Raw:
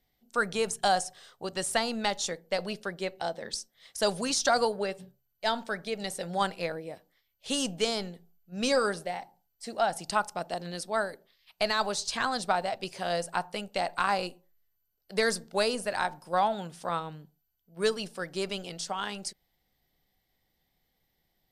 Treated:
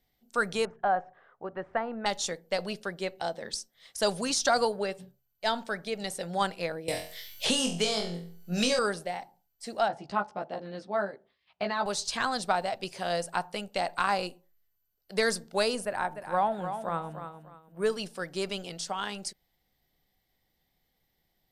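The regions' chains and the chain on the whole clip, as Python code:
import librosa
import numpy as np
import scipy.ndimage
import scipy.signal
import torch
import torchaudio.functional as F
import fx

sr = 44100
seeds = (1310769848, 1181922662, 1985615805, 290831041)

y = fx.chain(x, sr, fx.lowpass(hz=1700.0, slope=24),
    fx.low_shelf(hz=260.0, db=-7.0), at=(0.65, 2.06))
y = fx.chain(y, sr, fx.room_flutter(wall_m=4.0, rt60_s=0.35),
    fx.band_squash(depth_pct=100), at=(6.88, 8.79))
y = fx.chain(y, sr, fx.highpass(hz=81.0, slope=12),
    fx.spacing_loss(db_at_10k=32),
    fx.doubler(ms=15.0, db=-3), at=(9.88, 11.86))
y = fx.chain(y, sr, fx.peak_eq(hz=4800.0, db=-15.0, octaves=1.4),
    fx.echo_feedback(ms=298, feedback_pct=27, wet_db=-9), at=(15.85, 17.9))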